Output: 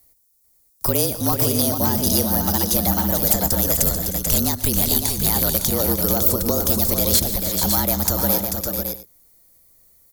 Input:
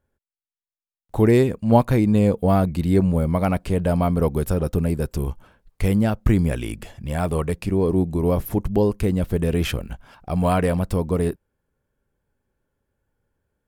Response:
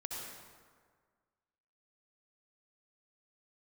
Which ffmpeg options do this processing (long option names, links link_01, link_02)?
-filter_complex "[0:a]highshelf=frequency=6700:gain=11.5,acrossover=split=660|7600[link_01][link_02][link_03];[link_01]acompressor=threshold=-28dB:ratio=4[link_04];[link_02]acompressor=threshold=-39dB:ratio=4[link_05];[link_03]acompressor=threshold=-49dB:ratio=4[link_06];[link_04][link_05][link_06]amix=inputs=3:normalize=0,acrossover=split=120|1400[link_07][link_08][link_09];[link_09]aexciter=amount=6.4:drive=8:freq=3000[link_10];[link_07][link_08][link_10]amix=inputs=3:normalize=0,afreqshift=-29,aeval=exprs='0.224*(abs(mod(val(0)/0.224+3,4)-2)-1)':channel_layout=same,asplit=2[link_11][link_12];[link_12]aecho=0:1:166|204|415|592|752|882:0.119|0.126|0.158|0.473|0.447|0.1[link_13];[link_11][link_13]amix=inputs=2:normalize=0,asetrate=59535,aresample=44100,volume=5dB"